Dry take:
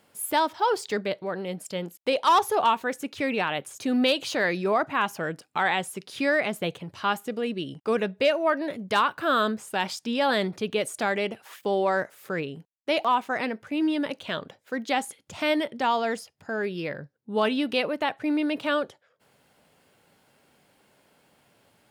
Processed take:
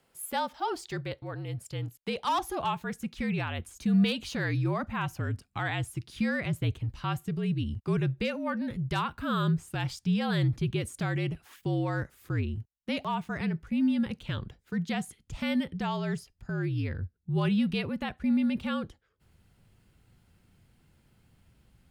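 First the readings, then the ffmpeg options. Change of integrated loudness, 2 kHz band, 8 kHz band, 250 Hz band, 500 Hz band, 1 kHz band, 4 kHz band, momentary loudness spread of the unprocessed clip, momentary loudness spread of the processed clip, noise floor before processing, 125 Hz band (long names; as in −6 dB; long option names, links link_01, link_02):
−4.5 dB, −8.0 dB, −7.0 dB, 0.0 dB, −10.5 dB, −9.5 dB, −7.5 dB, 10 LU, 9 LU, −66 dBFS, +12.0 dB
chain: -af "asubboost=boost=10.5:cutoff=180,afreqshift=-55,volume=-7dB"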